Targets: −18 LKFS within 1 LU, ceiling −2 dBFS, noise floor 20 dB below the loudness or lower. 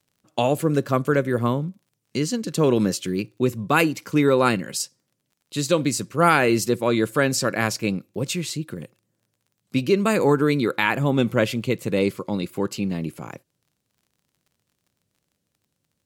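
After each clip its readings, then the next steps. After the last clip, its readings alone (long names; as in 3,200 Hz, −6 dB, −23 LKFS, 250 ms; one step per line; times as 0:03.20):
crackle rate 31 per second; integrated loudness −22.5 LKFS; sample peak −4.0 dBFS; target loudness −18.0 LKFS
→ click removal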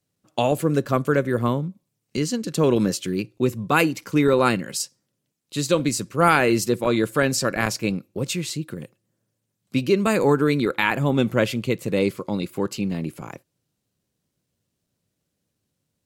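crackle rate 0.37 per second; integrated loudness −22.5 LKFS; sample peak −4.0 dBFS; target loudness −18.0 LKFS
→ level +4.5 dB
brickwall limiter −2 dBFS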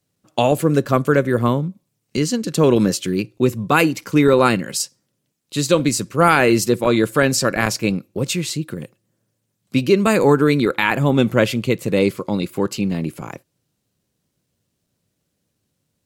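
integrated loudness −18.0 LKFS; sample peak −2.0 dBFS; background noise floor −74 dBFS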